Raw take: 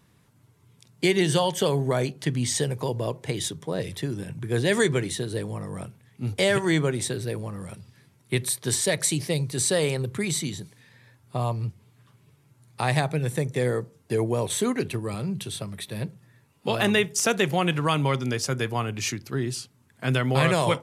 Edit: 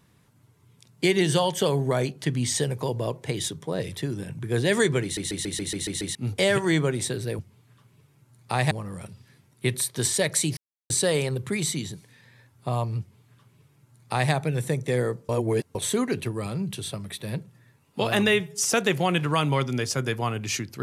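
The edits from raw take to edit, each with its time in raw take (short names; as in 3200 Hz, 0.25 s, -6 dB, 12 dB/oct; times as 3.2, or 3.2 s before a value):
5.03 stutter in place 0.14 s, 8 plays
9.25–9.58 mute
11.68–13 copy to 7.39
13.97–14.43 reverse
16.95–17.25 stretch 1.5×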